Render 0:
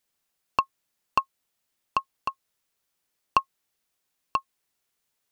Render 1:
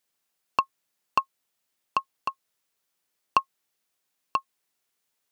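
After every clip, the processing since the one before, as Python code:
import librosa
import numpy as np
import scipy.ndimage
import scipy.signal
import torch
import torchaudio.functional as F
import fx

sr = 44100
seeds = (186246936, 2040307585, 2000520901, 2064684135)

y = fx.low_shelf(x, sr, hz=85.0, db=-12.0)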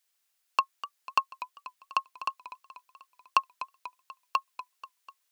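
y = fx.highpass(x, sr, hz=1400.0, slope=6)
y = fx.echo_warbled(y, sr, ms=245, feedback_pct=58, rate_hz=2.8, cents=131, wet_db=-14)
y = y * 10.0 ** (2.5 / 20.0)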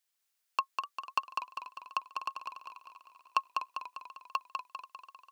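y = fx.echo_feedback(x, sr, ms=199, feedback_pct=51, wet_db=-4.5)
y = y * 10.0 ** (-5.5 / 20.0)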